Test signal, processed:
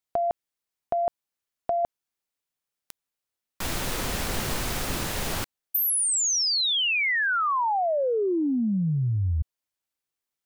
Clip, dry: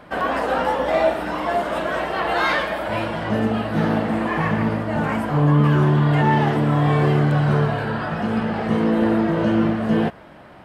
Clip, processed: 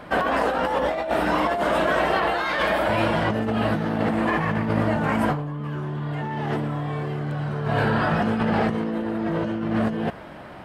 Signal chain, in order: negative-ratio compressor -24 dBFS, ratio -1

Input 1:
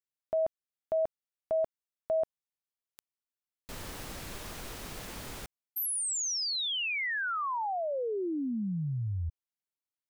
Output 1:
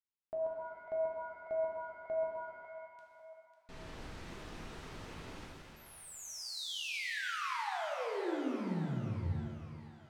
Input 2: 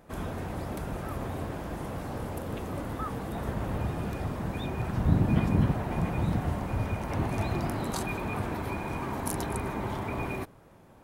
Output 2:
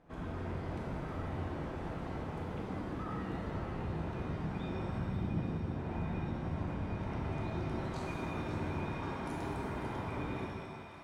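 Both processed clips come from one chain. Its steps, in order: high shelf 5300 Hz -7.5 dB; notch 550 Hz, Q 12; compressor, threshold -30 dBFS; air absorption 72 m; split-band echo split 600 Hz, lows 0.126 s, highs 0.547 s, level -9 dB; shimmer reverb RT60 1.5 s, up +7 st, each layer -8 dB, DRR -1.5 dB; gain -8.5 dB

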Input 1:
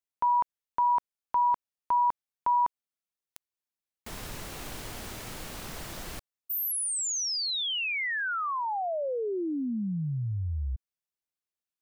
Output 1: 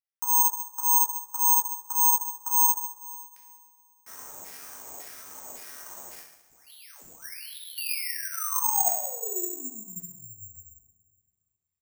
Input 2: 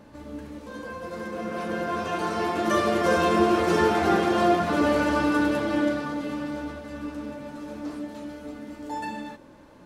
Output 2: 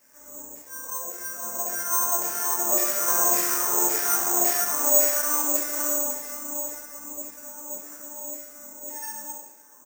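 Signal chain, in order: low shelf 440 Hz +8 dB; in parallel at -8 dB: wrapped overs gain 13.5 dB; on the sum: LFO band-pass saw down 1.8 Hz 650–2200 Hz; on a send: feedback echo 68 ms, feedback 56%, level -9.5 dB; on the sum: two-slope reverb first 0.45 s, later 2.2 s, from -20 dB, DRR -3.5 dB; careless resampling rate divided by 6×, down none, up zero stuff; ending taper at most 500 dB/s; gain -10 dB

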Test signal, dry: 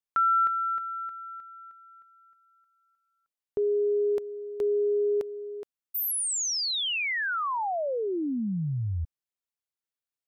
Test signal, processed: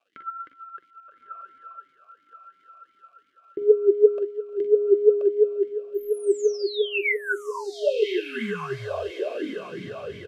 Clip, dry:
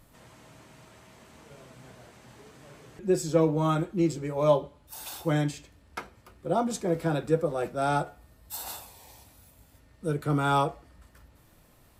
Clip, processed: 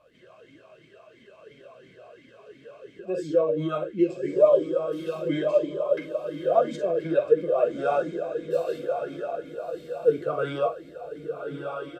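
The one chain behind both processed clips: low shelf 370 Hz +5 dB; comb 1.9 ms, depth 59%; early reflections 44 ms -8.5 dB, 59 ms -13 dB; crackle 280/s -50 dBFS; on a send: diffused feedback echo 1.247 s, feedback 45%, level -6 dB; on the sum: flange 1.8 Hz, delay 3.2 ms, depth 2.8 ms, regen +65%; maximiser +17 dB; vowel sweep a-i 2.9 Hz; gain -3 dB

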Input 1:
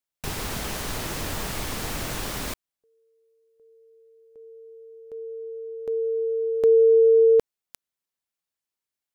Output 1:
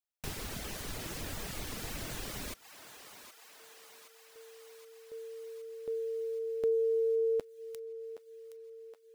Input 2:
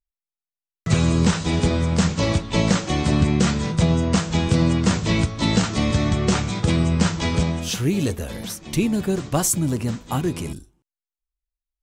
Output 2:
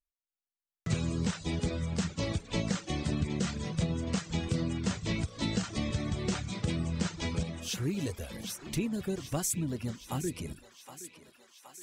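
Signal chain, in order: compressor 1.5:1, threshold -25 dBFS; thinning echo 0.77 s, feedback 70%, high-pass 510 Hz, level -11.5 dB; reverb removal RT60 0.63 s; dynamic EQ 980 Hz, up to -4 dB, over -45 dBFS, Q 1.4; gain -7.5 dB

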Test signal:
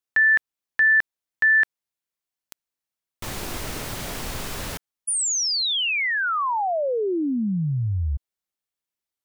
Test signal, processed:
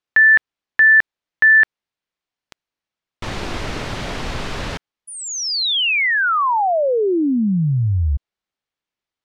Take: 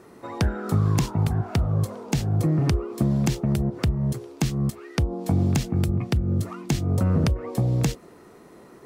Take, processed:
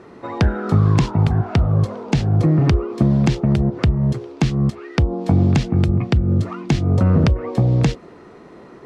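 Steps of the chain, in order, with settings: LPF 4200 Hz 12 dB/oct; gain +6.5 dB

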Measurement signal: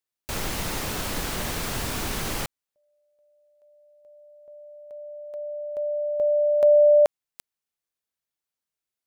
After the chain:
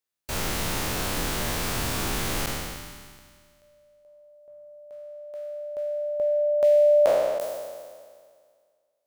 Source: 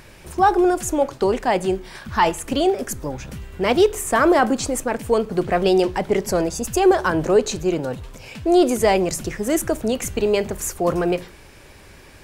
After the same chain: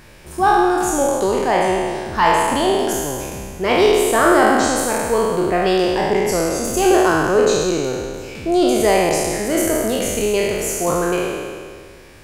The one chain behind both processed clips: spectral trails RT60 1.93 s; gain -2 dB

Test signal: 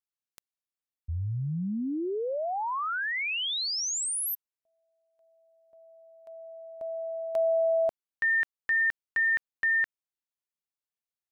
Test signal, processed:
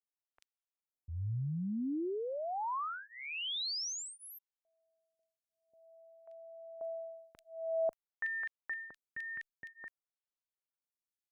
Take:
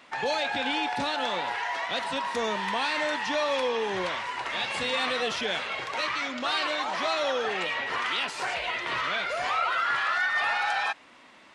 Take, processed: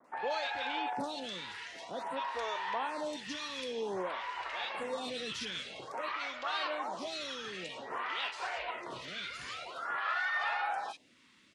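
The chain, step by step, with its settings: bands offset in time lows, highs 40 ms, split 2000 Hz; vibrato 0.34 Hz 11 cents; photocell phaser 0.51 Hz; gain -4.5 dB

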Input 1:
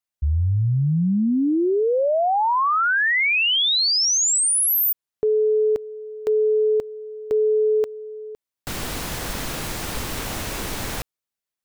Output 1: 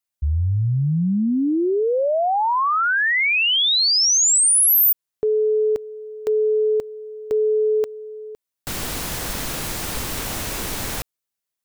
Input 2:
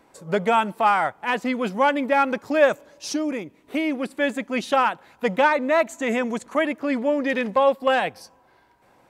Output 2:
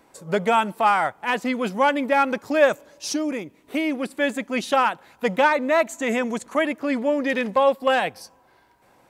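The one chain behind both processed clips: high shelf 5400 Hz +5 dB

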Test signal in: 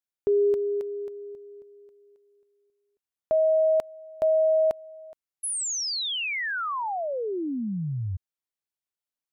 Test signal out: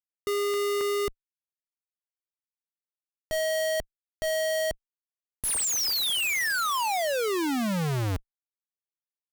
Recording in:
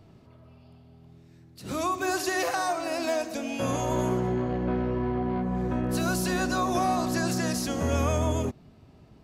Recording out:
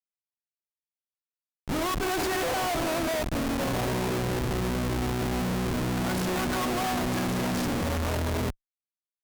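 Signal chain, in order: Schmitt trigger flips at -30.5 dBFS; added harmonics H 7 -15 dB, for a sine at -22 dBFS

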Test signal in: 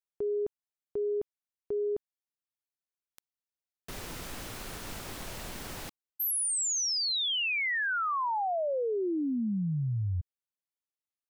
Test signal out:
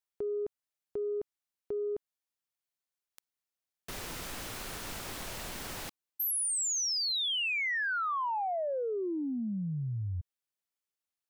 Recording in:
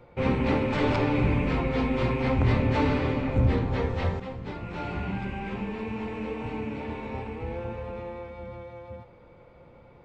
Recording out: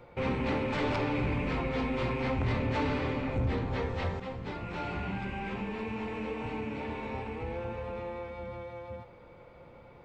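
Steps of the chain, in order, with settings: low shelf 490 Hz -4 dB; in parallel at 0 dB: compressor 6:1, threshold -37 dBFS; on the sum: soft clip -17.5 dBFS; gain -4 dB

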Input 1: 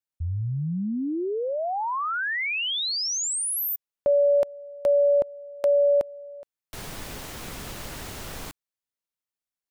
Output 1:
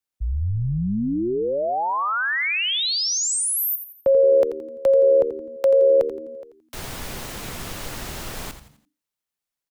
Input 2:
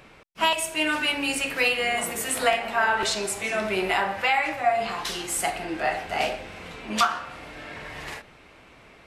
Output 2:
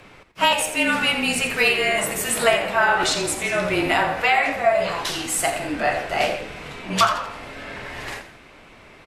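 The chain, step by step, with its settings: frequency shift -28 Hz; frequency-shifting echo 85 ms, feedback 40%, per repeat -76 Hz, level -11 dB; gain +4 dB

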